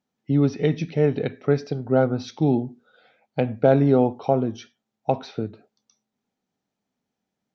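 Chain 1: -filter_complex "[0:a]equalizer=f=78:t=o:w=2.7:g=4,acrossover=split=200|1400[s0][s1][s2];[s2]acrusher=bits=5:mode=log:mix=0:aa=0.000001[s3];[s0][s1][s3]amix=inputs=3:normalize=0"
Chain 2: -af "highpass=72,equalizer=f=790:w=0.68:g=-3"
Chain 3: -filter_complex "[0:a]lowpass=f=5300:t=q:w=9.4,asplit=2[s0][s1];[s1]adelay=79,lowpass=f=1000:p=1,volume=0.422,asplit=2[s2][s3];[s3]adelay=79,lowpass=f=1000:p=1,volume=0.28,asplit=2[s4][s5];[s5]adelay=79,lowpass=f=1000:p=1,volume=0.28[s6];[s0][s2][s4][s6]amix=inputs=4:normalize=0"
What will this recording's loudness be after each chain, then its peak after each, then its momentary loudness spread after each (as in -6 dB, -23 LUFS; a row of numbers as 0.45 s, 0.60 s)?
-21.5 LUFS, -24.0 LUFS, -22.0 LUFS; -4.5 dBFS, -7.0 dBFS, -4.5 dBFS; 13 LU, 14 LU, 15 LU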